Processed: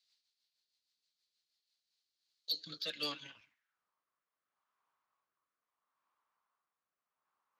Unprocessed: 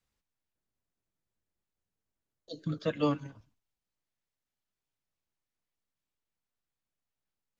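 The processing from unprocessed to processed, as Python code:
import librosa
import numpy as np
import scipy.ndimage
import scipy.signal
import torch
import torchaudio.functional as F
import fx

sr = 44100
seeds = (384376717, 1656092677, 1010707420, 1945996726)

p1 = np.where(x < 0.0, 10.0 ** (-3.0 / 20.0) * x, x)
p2 = fx.filter_sweep_bandpass(p1, sr, from_hz=4300.0, to_hz=1100.0, start_s=3.09, end_s=3.88, q=4.9)
p3 = fx.fold_sine(p2, sr, drive_db=7, ceiling_db=-38.5)
p4 = p2 + (p3 * librosa.db_to_amplitude(-4.0))
p5 = fx.rotary_switch(p4, sr, hz=6.3, then_hz=0.75, switch_at_s=1.5)
y = p5 * librosa.db_to_amplitude(12.5)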